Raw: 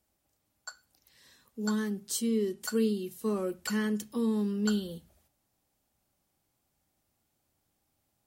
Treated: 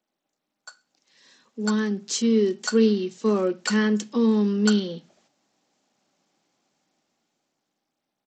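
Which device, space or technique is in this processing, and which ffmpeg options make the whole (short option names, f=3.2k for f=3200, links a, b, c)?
Bluetooth headset: -af "highpass=f=180:w=0.5412,highpass=f=180:w=1.3066,dynaudnorm=f=320:g=9:m=10.5dB,aresample=16000,aresample=44100,volume=-1dB" -ar 32000 -c:a sbc -b:a 64k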